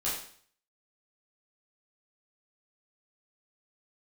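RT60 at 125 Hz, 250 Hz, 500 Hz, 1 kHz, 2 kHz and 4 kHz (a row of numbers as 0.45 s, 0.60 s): 0.55 s, 0.55 s, 0.50 s, 0.55 s, 0.55 s, 0.55 s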